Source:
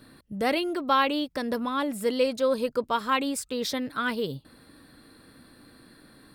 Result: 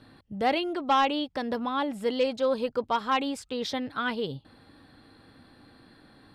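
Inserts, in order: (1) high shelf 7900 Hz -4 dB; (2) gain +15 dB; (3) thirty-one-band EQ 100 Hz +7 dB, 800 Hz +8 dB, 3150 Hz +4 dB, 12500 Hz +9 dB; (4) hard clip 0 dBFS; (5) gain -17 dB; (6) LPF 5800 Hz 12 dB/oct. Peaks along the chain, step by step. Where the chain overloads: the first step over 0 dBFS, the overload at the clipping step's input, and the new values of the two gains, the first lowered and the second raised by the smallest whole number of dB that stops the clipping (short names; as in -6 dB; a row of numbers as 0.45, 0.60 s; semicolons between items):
-10.5, +4.5, +7.5, 0.0, -17.0, -16.5 dBFS; step 2, 7.5 dB; step 2 +7 dB, step 5 -9 dB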